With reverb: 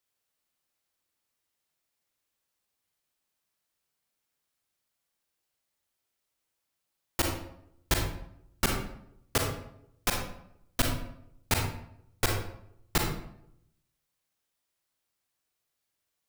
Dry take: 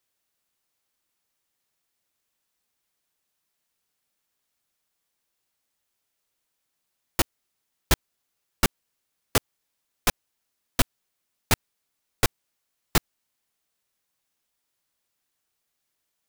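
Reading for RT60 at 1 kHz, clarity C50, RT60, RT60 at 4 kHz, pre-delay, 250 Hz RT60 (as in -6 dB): 0.70 s, 3.5 dB, 0.75 s, 0.50 s, 33 ms, 0.85 s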